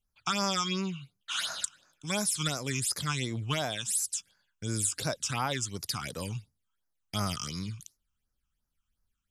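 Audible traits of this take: phasing stages 8, 2.8 Hz, lowest notch 540–3200 Hz

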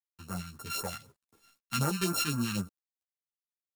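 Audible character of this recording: a buzz of ramps at a fixed pitch in blocks of 32 samples; phasing stages 2, 3.9 Hz, lowest notch 490–3300 Hz; a quantiser's noise floor 12-bit, dither none; a shimmering, thickened sound

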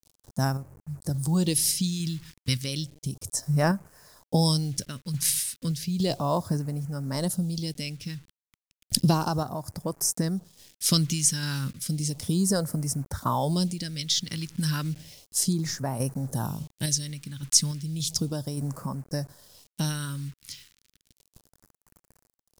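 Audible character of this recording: a quantiser's noise floor 8-bit, dither none; phasing stages 2, 0.33 Hz, lowest notch 620–3300 Hz; random-step tremolo

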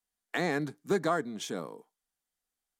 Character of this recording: noise floor -89 dBFS; spectral tilt -5.0 dB/oct

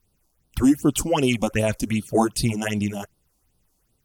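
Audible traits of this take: phasing stages 6, 2.6 Hz, lowest notch 110–2100 Hz; AAC

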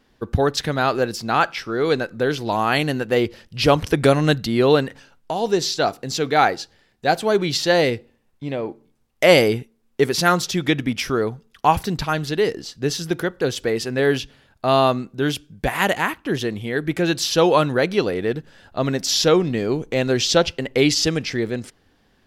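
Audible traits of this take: noise floor -62 dBFS; spectral tilt -4.5 dB/oct

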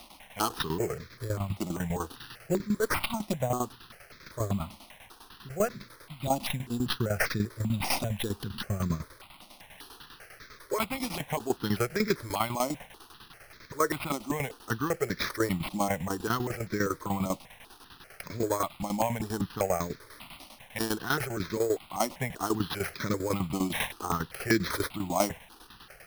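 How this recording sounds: a quantiser's noise floor 8-bit, dither triangular; tremolo saw down 10 Hz, depth 80%; aliases and images of a low sample rate 7400 Hz, jitter 0%; notches that jump at a steady rate 5.1 Hz 440–2900 Hz

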